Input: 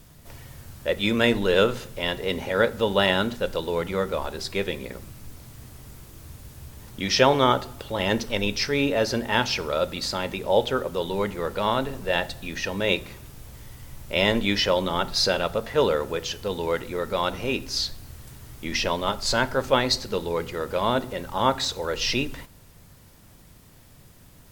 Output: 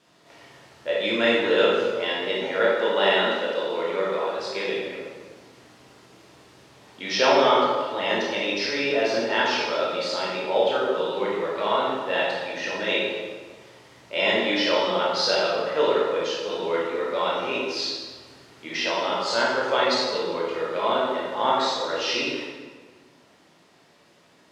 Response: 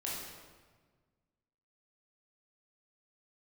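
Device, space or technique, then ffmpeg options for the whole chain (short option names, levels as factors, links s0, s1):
supermarket ceiling speaker: -filter_complex "[0:a]highpass=350,lowpass=5000[s0];[1:a]atrim=start_sample=2205[s1];[s0][s1]afir=irnorm=-1:irlink=0,asettb=1/sr,asplit=3[s2][s3][s4];[s2]atrim=end=2.754[s5];[s3]atrim=start=2.75:end=4.35,asetpts=PTS-STARTPTS,afade=t=in:d=0.004:c=qsin,afade=t=out:st=1.596:d=0.004:c=qsin,highpass=180[s6];[s4]atrim=start=4.346[s7];[s5][s6]acrossfade=d=0.004:c1=hsin:c2=qsin[s8];[s8][s7]acrossfade=d=0.004:c1=qsin:c2=hsin"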